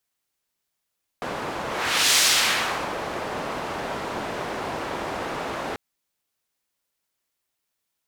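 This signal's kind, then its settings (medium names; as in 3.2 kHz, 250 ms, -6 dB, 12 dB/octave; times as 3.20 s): whoosh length 4.54 s, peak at 0.95 s, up 0.54 s, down 0.82 s, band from 730 Hz, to 5 kHz, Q 0.76, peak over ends 12.5 dB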